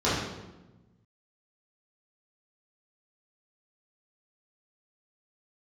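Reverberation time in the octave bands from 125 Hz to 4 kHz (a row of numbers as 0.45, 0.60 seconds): 1.8, 1.6, 1.2, 1.0, 0.85, 0.75 seconds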